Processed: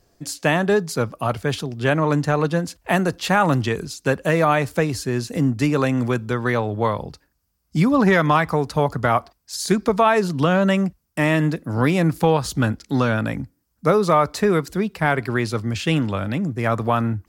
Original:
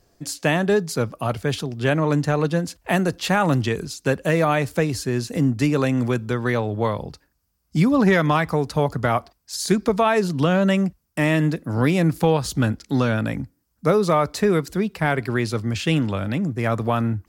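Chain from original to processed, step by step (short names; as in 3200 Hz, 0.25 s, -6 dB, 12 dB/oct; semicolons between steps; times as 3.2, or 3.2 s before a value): dynamic EQ 1100 Hz, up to +4 dB, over -32 dBFS, Q 1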